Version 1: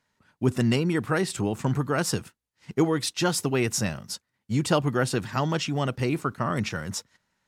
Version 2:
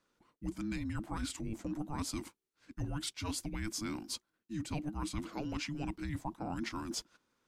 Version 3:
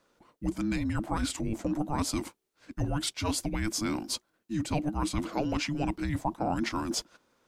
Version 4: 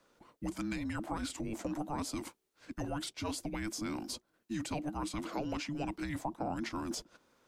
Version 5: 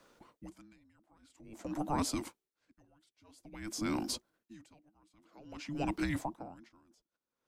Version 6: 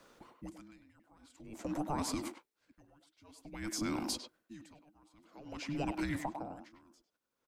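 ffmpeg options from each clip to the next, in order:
-af "areverse,acompressor=threshold=-32dB:ratio=6,areverse,afreqshift=-440,volume=-3.5dB"
-af "equalizer=f=610:t=o:w=1:g=6.5,volume=7dB"
-filter_complex "[0:a]acrossover=split=210|650[a][b][c];[a]acompressor=threshold=-45dB:ratio=4[d];[b]acompressor=threshold=-39dB:ratio=4[e];[c]acompressor=threshold=-41dB:ratio=4[f];[d][e][f]amix=inputs=3:normalize=0"
-af "aeval=exprs='val(0)*pow(10,-36*(0.5-0.5*cos(2*PI*0.5*n/s))/20)':c=same,volume=5dB"
-filter_complex "[0:a]asplit=2[a][b];[b]adelay=100,highpass=300,lowpass=3.4k,asoftclip=type=hard:threshold=-29dB,volume=-7dB[c];[a][c]amix=inputs=2:normalize=0,acompressor=threshold=-35dB:ratio=5,volume=2.5dB"

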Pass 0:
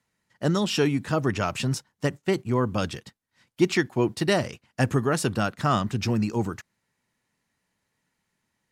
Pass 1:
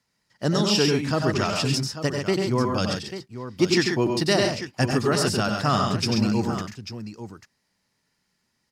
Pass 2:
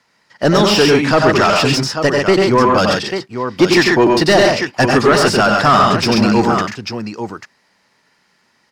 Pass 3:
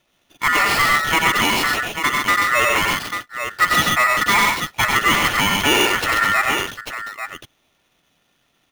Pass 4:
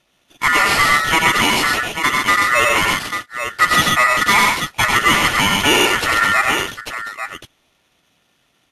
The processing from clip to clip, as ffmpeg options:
-filter_complex "[0:a]equalizer=f=5k:t=o:w=0.42:g=11,asplit=2[a][b];[b]aecho=0:1:91|96|134|842:0.398|0.398|0.501|0.266[c];[a][c]amix=inputs=2:normalize=0"
-filter_complex "[0:a]asplit=2[a][b];[b]highpass=f=720:p=1,volume=20dB,asoftclip=type=tanh:threshold=-6.5dB[c];[a][c]amix=inputs=2:normalize=0,lowpass=f=1.8k:p=1,volume=-6dB,volume=6.5dB"
-af "acrusher=samples=7:mix=1:aa=0.000001,aeval=exprs='val(0)*sin(2*PI*1600*n/s)':c=same,volume=-2.5dB"
-af "volume=2.5dB" -ar 32000 -c:a libvorbis -b:a 48k

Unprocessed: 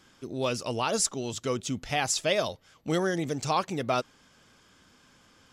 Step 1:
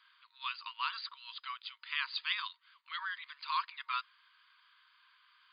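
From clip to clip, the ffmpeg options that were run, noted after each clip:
-af "afftfilt=real='re*between(b*sr/4096,930,4900)':imag='im*between(b*sr/4096,930,4900)':win_size=4096:overlap=0.75,volume=-3.5dB"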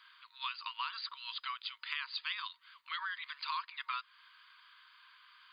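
-af "acompressor=threshold=-42dB:ratio=4,volume=5.5dB"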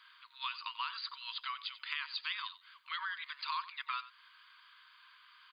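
-af "aecho=1:1:92:0.168"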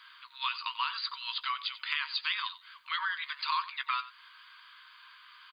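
-filter_complex "[0:a]asplit=2[a][b];[b]adelay=15,volume=-11.5dB[c];[a][c]amix=inputs=2:normalize=0,volume=6dB"

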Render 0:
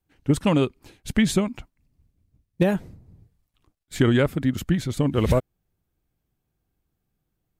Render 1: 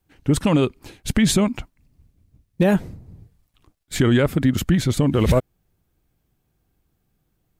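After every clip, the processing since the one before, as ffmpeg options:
-af "alimiter=level_in=14.5dB:limit=-1dB:release=50:level=0:latency=1,volume=-7dB"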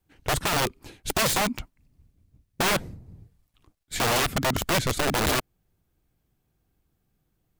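-af "aeval=exprs='(mod(5.31*val(0)+1,2)-1)/5.31':c=same,volume=-3.5dB"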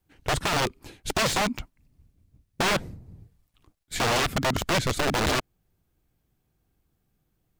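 -filter_complex "[0:a]acrossover=split=8000[a][b];[b]acompressor=threshold=-37dB:ratio=4:attack=1:release=60[c];[a][c]amix=inputs=2:normalize=0"

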